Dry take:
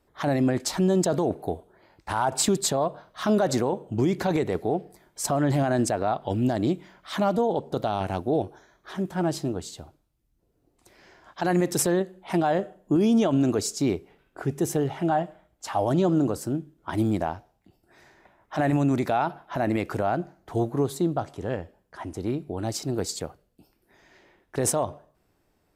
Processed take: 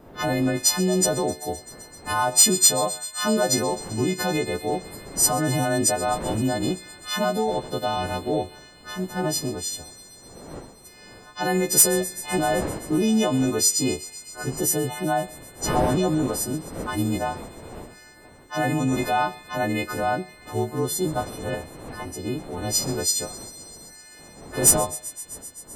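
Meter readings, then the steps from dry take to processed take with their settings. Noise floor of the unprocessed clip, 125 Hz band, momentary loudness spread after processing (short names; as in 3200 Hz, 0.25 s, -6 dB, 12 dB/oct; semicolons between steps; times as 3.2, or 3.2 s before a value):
-70 dBFS, -0.5 dB, 19 LU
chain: frequency quantiser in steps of 3 st; wind noise 520 Hz -39 dBFS; on a send: thin delay 0.129 s, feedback 83%, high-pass 2200 Hz, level -17.5 dB; on the sum: hard clip -7 dBFS, distortion -25 dB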